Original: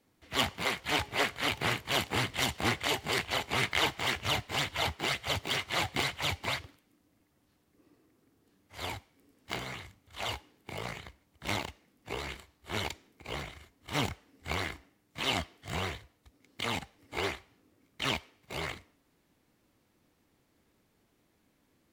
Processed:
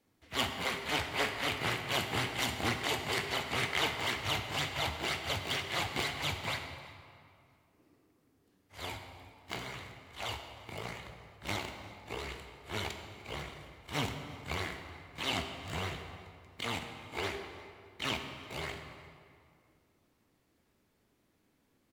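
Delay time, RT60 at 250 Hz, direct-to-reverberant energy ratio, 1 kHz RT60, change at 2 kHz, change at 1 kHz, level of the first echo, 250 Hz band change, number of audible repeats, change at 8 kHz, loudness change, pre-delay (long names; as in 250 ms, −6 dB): 350 ms, 2.5 s, 5.0 dB, 2.2 s, −2.5 dB, −2.0 dB, −22.5 dB, −2.0 dB, 1, −3.0 dB, −3.0 dB, 9 ms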